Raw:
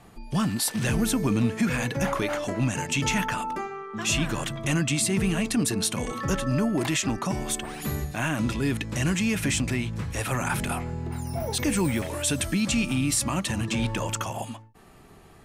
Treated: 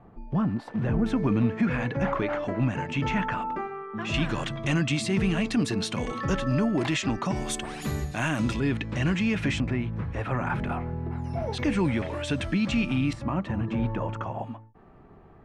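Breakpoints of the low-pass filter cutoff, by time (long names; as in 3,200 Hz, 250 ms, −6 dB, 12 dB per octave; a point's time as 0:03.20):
1,100 Hz
from 0:01.06 2,100 Hz
from 0:04.14 4,400 Hz
from 0:07.36 7,600 Hz
from 0:08.60 3,200 Hz
from 0:09.60 1,700 Hz
from 0:11.24 3,000 Hz
from 0:13.13 1,300 Hz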